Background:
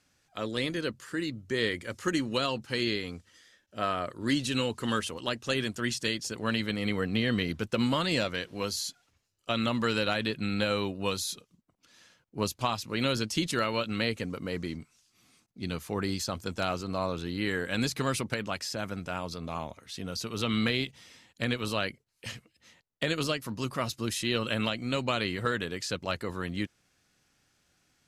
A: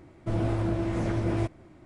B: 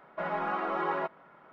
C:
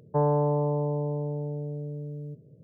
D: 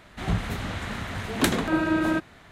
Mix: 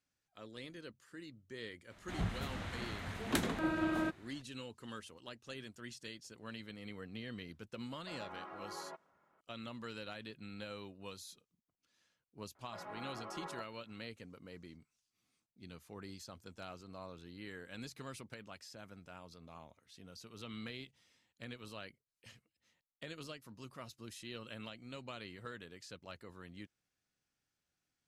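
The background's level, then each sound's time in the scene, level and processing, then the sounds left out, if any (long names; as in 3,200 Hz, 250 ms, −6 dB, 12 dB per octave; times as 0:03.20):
background −18 dB
0:01.91: mix in D −11 dB
0:07.89: mix in B −17 dB
0:12.55: mix in B −16 dB
not used: A, C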